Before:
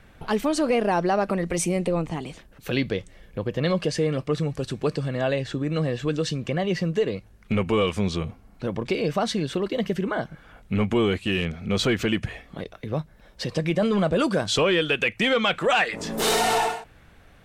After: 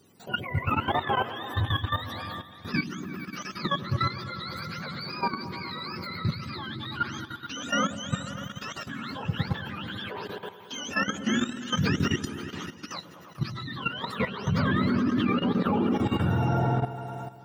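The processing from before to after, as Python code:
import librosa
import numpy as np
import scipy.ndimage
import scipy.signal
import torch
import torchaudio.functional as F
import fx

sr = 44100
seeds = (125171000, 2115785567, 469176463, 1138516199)

y = fx.octave_mirror(x, sr, pivot_hz=790.0)
y = fx.echo_opening(y, sr, ms=109, hz=400, octaves=1, feedback_pct=70, wet_db=-3)
y = fx.level_steps(y, sr, step_db=12)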